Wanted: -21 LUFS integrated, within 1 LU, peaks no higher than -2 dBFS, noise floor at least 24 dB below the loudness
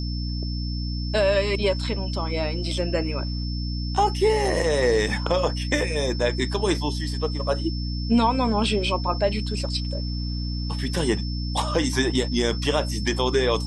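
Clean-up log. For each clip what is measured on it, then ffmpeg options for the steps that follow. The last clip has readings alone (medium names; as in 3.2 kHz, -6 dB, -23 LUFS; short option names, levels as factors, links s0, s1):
hum 60 Hz; highest harmonic 300 Hz; hum level -25 dBFS; steady tone 5.3 kHz; tone level -36 dBFS; loudness -24.5 LUFS; peak level -8.5 dBFS; loudness target -21.0 LUFS
-> -af "bandreject=f=60:t=h:w=6,bandreject=f=120:t=h:w=6,bandreject=f=180:t=h:w=6,bandreject=f=240:t=h:w=6,bandreject=f=300:t=h:w=6"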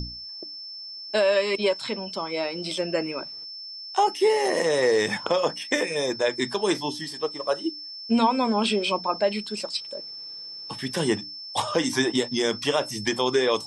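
hum not found; steady tone 5.3 kHz; tone level -36 dBFS
-> -af "bandreject=f=5300:w=30"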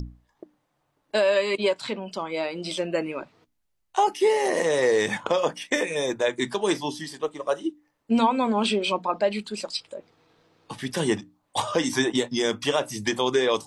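steady tone not found; loudness -25.5 LUFS; peak level -9.0 dBFS; loudness target -21.0 LUFS
-> -af "volume=1.68"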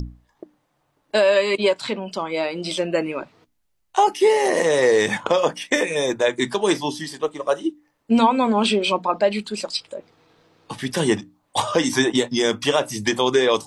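loudness -21.0 LUFS; peak level -4.5 dBFS; noise floor -69 dBFS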